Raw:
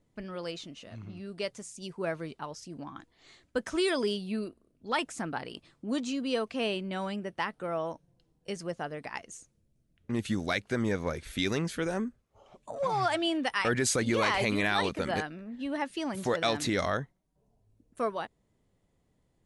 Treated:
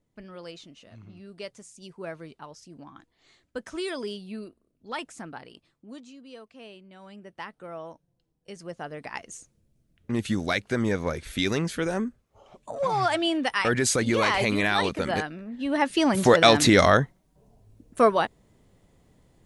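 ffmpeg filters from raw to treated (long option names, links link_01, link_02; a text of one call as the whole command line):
ffmpeg -i in.wav -af "volume=23dB,afade=type=out:start_time=5.14:duration=0.98:silence=0.281838,afade=type=in:start_time=6.99:duration=0.43:silence=0.354813,afade=type=in:start_time=8.5:duration=0.82:silence=0.316228,afade=type=in:start_time=15.59:duration=0.41:silence=0.398107" out.wav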